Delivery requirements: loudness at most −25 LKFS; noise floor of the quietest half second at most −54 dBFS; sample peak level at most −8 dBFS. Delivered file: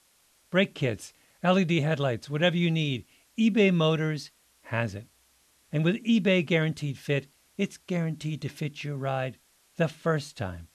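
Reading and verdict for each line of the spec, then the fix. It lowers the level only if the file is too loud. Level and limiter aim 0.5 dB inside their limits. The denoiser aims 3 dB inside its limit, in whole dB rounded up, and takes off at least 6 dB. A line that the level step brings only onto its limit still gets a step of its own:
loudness −27.5 LKFS: in spec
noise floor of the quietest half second −65 dBFS: in spec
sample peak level −10.5 dBFS: in spec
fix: no processing needed

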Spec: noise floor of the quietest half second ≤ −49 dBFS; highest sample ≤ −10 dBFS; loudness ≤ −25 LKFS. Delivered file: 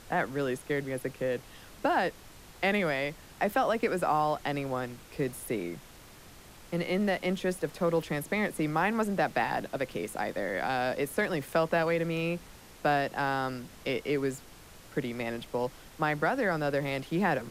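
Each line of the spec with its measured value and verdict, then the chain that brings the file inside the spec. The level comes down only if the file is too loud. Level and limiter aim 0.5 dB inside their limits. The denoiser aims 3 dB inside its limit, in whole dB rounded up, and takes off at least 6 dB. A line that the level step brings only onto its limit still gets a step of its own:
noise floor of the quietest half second −51 dBFS: in spec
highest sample −15.0 dBFS: in spec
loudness −31.0 LKFS: in spec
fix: no processing needed

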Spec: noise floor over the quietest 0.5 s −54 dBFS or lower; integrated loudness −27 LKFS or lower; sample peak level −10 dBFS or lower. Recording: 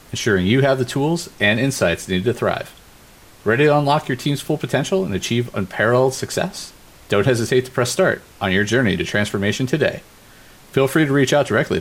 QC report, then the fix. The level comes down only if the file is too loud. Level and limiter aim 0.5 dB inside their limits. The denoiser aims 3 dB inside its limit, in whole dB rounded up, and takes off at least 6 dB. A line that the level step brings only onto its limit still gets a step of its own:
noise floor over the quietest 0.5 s −46 dBFS: out of spec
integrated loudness −18.5 LKFS: out of spec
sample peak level −4.0 dBFS: out of spec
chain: level −9 dB

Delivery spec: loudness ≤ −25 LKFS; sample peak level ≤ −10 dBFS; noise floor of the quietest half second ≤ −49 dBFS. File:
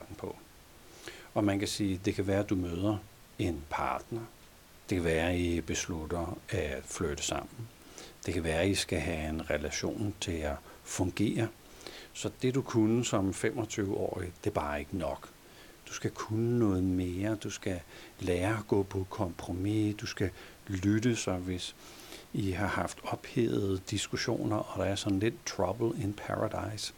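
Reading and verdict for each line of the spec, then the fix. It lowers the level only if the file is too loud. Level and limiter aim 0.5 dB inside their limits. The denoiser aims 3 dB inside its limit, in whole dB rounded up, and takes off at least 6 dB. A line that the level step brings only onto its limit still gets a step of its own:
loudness −33.0 LKFS: in spec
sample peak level −15.0 dBFS: in spec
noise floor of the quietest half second −56 dBFS: in spec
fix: no processing needed

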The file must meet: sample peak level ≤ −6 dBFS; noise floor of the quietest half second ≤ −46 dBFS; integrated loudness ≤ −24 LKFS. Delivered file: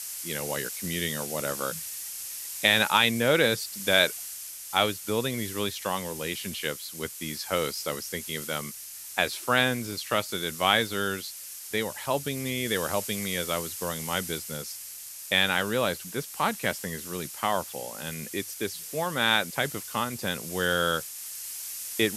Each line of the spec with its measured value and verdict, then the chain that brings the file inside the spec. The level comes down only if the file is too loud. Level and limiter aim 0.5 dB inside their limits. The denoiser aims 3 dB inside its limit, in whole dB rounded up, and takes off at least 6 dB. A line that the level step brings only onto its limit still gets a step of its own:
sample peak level −5.5 dBFS: out of spec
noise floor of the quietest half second −41 dBFS: out of spec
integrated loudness −28.0 LKFS: in spec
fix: broadband denoise 8 dB, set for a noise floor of −41 dBFS
brickwall limiter −6.5 dBFS

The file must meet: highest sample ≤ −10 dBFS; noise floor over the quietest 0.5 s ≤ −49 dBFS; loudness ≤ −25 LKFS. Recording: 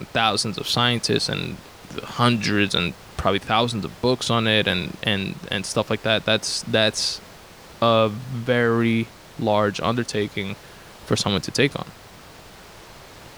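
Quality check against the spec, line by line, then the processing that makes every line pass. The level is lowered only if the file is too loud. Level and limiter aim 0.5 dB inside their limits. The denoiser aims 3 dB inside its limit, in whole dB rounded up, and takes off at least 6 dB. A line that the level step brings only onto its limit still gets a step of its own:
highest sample −4.0 dBFS: out of spec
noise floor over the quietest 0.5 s −44 dBFS: out of spec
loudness −22.0 LKFS: out of spec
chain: broadband denoise 6 dB, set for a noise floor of −44 dBFS
level −3.5 dB
brickwall limiter −10.5 dBFS

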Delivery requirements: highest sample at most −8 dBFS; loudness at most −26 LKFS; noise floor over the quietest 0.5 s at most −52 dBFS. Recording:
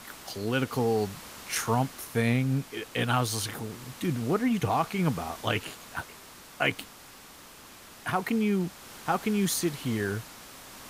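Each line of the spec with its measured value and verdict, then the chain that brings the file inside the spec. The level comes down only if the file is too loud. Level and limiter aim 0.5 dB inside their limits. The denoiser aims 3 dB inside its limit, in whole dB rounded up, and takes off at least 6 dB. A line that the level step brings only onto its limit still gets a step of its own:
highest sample −11.5 dBFS: in spec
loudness −29.5 LKFS: in spec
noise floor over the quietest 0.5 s −50 dBFS: out of spec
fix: broadband denoise 6 dB, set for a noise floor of −50 dBFS

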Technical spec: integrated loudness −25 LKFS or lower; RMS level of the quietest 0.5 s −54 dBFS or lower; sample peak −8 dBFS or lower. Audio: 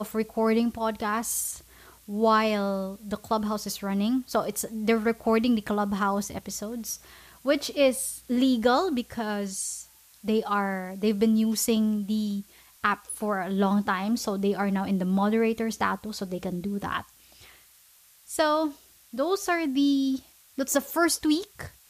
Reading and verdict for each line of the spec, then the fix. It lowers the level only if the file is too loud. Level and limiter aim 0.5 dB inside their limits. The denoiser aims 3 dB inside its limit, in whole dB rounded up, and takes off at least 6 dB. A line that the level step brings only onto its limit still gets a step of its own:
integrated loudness −27.0 LKFS: in spec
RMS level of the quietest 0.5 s −57 dBFS: in spec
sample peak −9.5 dBFS: in spec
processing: no processing needed

